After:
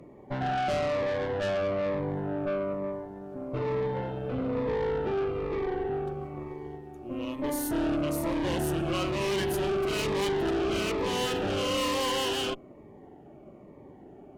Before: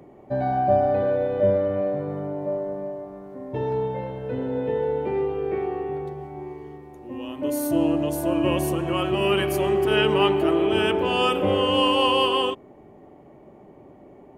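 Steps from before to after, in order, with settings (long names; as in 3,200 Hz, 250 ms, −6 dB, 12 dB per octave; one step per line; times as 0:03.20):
high-shelf EQ 8,000 Hz −4.5 dB
tube saturation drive 29 dB, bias 0.75
phaser whose notches keep moving one way falling 1.1 Hz
level +4 dB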